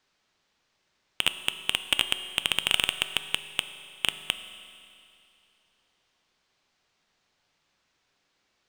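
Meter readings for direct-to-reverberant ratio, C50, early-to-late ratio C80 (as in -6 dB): 10.0 dB, 11.5 dB, 12.0 dB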